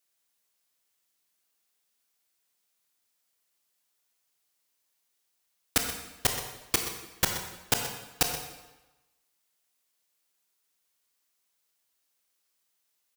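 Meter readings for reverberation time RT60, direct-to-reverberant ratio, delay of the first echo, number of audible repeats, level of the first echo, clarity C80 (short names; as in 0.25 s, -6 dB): 1.1 s, 3.5 dB, 0.126 s, 1, -12.0 dB, 6.5 dB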